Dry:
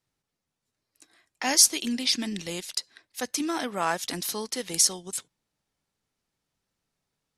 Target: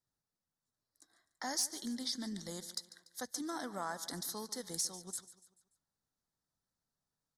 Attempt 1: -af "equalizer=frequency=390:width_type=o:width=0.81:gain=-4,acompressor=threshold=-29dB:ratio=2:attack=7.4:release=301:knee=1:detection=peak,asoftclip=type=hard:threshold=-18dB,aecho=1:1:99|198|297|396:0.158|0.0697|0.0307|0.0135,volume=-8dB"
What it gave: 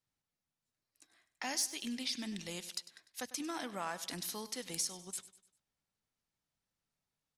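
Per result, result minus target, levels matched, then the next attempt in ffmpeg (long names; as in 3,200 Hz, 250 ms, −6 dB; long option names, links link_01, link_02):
echo 46 ms early; 2,000 Hz band +3.0 dB
-af "equalizer=frequency=390:width_type=o:width=0.81:gain=-4,acompressor=threshold=-29dB:ratio=2:attack=7.4:release=301:knee=1:detection=peak,asoftclip=type=hard:threshold=-18dB,aecho=1:1:145|290|435|580:0.158|0.0697|0.0307|0.0135,volume=-8dB"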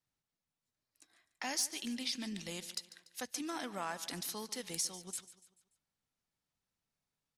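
2,000 Hz band +3.0 dB
-af "asuperstop=centerf=2600:order=4:qfactor=1.4,equalizer=frequency=390:width_type=o:width=0.81:gain=-4,acompressor=threshold=-29dB:ratio=2:attack=7.4:release=301:knee=1:detection=peak,asoftclip=type=hard:threshold=-18dB,aecho=1:1:145|290|435|580:0.158|0.0697|0.0307|0.0135,volume=-8dB"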